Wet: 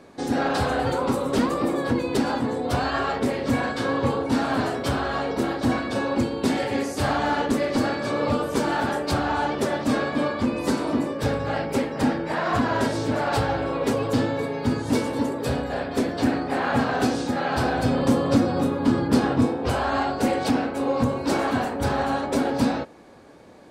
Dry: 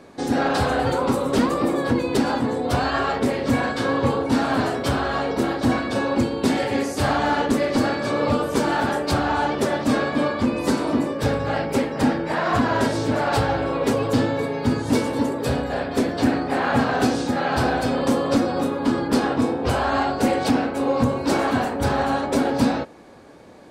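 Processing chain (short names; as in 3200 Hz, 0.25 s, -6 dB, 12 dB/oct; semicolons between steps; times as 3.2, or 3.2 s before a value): 17.78–19.48 bell 110 Hz +8.5 dB 2 oct; gain -2.5 dB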